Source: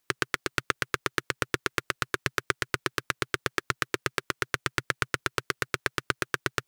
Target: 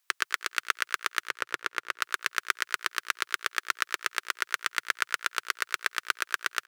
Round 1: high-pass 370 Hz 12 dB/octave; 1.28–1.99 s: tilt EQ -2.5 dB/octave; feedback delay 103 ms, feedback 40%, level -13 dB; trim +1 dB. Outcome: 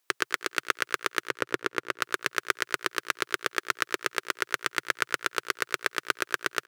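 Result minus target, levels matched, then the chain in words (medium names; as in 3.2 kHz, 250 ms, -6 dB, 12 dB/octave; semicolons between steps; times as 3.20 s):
500 Hz band +10.5 dB
high-pass 950 Hz 12 dB/octave; 1.28–1.99 s: tilt EQ -2.5 dB/octave; feedback delay 103 ms, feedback 40%, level -13 dB; trim +1 dB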